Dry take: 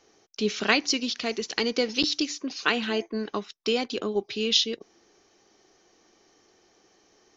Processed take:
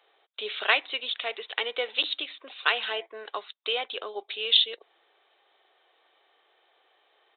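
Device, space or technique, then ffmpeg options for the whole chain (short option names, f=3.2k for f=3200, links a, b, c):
musical greeting card: -af "aresample=8000,aresample=44100,highpass=f=540:w=0.5412,highpass=f=540:w=1.3066,equalizer=f=3.7k:t=o:w=0.37:g=7.5"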